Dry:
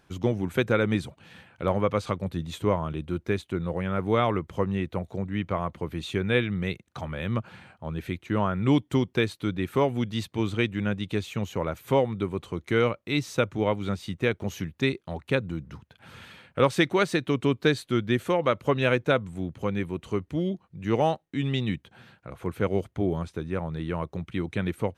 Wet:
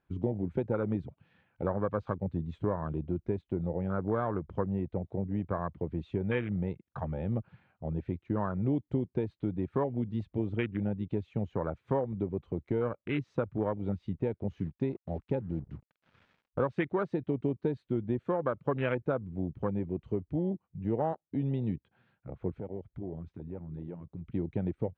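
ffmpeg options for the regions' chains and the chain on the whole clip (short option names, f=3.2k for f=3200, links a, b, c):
-filter_complex "[0:a]asettb=1/sr,asplit=3[a][b][c];[a]atrim=end=14.514[d];[b]atrim=start=14.51:end=16.71,asetpts=PTS-STARTPTS,afade=t=in:d=0.004:c=qsin,afade=t=out:st=2.196:d=0.004:c=qsin,equalizer=f=8.2k:t=o:w=0.53:g=-7.5,acrusher=bits=6:mix=0:aa=0.5[e];[c]atrim=start=16.706[f];[d][e]acrossfade=d=0.004:c1=hsin:c2=qsin[g];[g][f]acrossfade=d=0.004:c1=qsin:c2=hsin,asettb=1/sr,asplit=3[h][i][j];[h]atrim=end=22.514[k];[i]atrim=start=22.51:end=24.26,asetpts=PTS-STARTPTS,afade=t=in:d=0.004:c=qsin,afade=t=out:st=1.746:d=0.004:c=qsin,highpass=41,acompressor=threshold=-40dB:ratio=2.5:attack=3.2:release=140:knee=1:detection=peak[l];[j]atrim=start=24.256[m];[k][l]acrossfade=d=0.004:c1=hsin:c2=qsin[n];[n][m]acrossfade=d=0.004:c1=qsin:c2=hsin,acompressor=threshold=-28dB:ratio=3,afwtdn=0.0224,lowpass=2.6k"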